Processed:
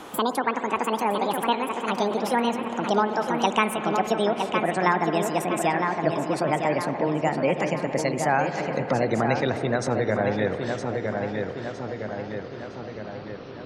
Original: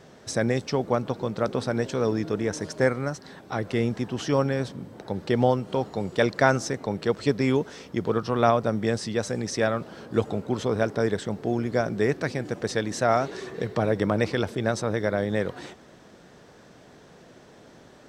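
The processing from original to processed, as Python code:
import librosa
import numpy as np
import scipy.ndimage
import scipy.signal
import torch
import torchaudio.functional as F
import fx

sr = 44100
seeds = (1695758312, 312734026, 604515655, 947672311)

p1 = fx.speed_glide(x, sr, from_pct=196, to_pct=69)
p2 = fx.spec_gate(p1, sr, threshold_db=-30, keep='strong')
p3 = p2 + fx.echo_filtered(p2, sr, ms=961, feedback_pct=48, hz=4000.0, wet_db=-6.0, dry=0)
p4 = fx.rev_spring(p3, sr, rt60_s=3.9, pass_ms=(55,), chirp_ms=70, drr_db=10.0)
y = fx.band_squash(p4, sr, depth_pct=40)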